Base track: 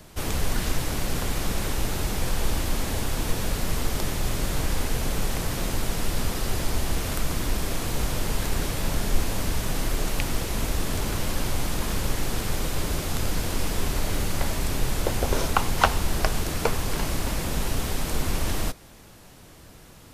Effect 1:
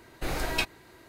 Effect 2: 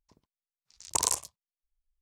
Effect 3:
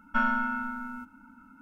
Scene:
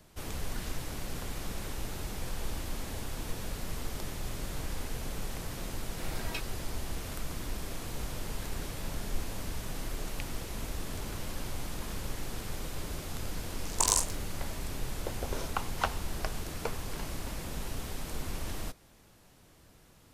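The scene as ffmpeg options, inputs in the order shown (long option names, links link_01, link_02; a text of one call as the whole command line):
ffmpeg -i bed.wav -i cue0.wav -i cue1.wav -filter_complex "[0:a]volume=-11dB[link_01];[2:a]aecho=1:1:20|42:0.501|0.266[link_02];[1:a]atrim=end=1.08,asetpts=PTS-STARTPTS,volume=-11dB,afade=type=in:duration=0.004:curve=hsin,afade=type=out:start_time=1.076:duration=0.004:curve=hsin,adelay=5760[link_03];[link_02]atrim=end=2.01,asetpts=PTS-STARTPTS,volume=-0.5dB,afade=type=in:duration=0.004:curve=hsin,afade=type=out:start_time=2.006:duration=0.004:curve=hsin,adelay=12850[link_04];[link_01][link_03][link_04]amix=inputs=3:normalize=0" out.wav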